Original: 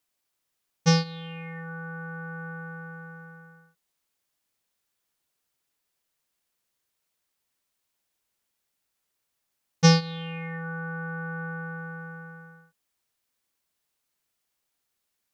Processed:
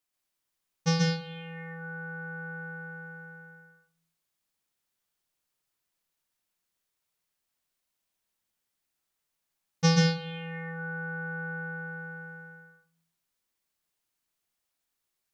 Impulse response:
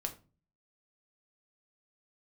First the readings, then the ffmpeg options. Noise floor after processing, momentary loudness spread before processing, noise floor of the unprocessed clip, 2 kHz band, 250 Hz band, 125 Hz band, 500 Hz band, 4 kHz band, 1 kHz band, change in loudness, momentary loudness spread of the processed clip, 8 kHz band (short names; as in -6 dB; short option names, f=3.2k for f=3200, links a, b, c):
-83 dBFS, 21 LU, -80 dBFS, 0.0 dB, -3.0 dB, -3.0 dB, -3.0 dB, -3.0 dB, -4.5 dB, -3.0 dB, 19 LU, n/a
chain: -filter_complex "[0:a]asplit=2[a][b];[b]equalizer=f=490:t=o:w=0.77:g=-4[c];[1:a]atrim=start_sample=2205,adelay=132[d];[c][d]afir=irnorm=-1:irlink=0,volume=0dB[e];[a][e]amix=inputs=2:normalize=0,volume=-6dB"